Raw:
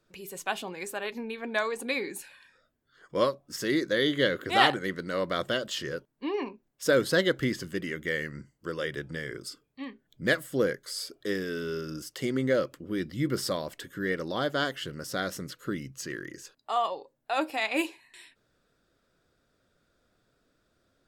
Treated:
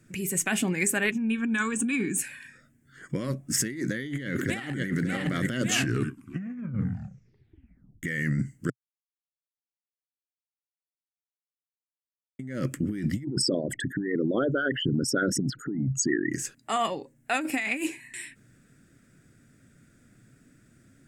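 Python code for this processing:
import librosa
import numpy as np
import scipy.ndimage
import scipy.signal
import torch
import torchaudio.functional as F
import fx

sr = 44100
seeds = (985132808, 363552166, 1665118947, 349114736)

y = fx.fixed_phaser(x, sr, hz=3000.0, stages=8, at=(1.11, 2.18))
y = fx.echo_throw(y, sr, start_s=3.81, length_s=1.08, ms=570, feedback_pct=40, wet_db=-10.0)
y = fx.envelope_sharpen(y, sr, power=3.0, at=(13.23, 16.31), fade=0.02)
y = fx.edit(y, sr, fx.tape_stop(start_s=5.55, length_s=2.48),
    fx.silence(start_s=8.7, length_s=3.69), tone=tone)
y = fx.graphic_eq(y, sr, hz=(125, 250, 500, 1000, 2000, 4000, 8000), db=(12, 10, -6, -9, 10, -11, 12))
y = fx.over_compress(y, sr, threshold_db=-31.0, ratio=-1.0)
y = y * librosa.db_to_amplitude(2.5)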